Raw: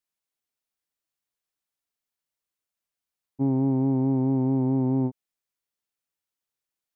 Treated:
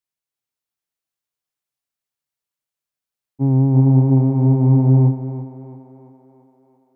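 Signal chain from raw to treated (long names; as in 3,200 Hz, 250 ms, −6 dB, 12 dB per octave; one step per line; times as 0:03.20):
parametric band 130 Hz +11 dB 0.21 octaves
feedback echo with a high-pass in the loop 338 ms, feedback 63%, high-pass 220 Hz, level −4.5 dB
expander for the loud parts 1.5 to 1, over −28 dBFS
level +5 dB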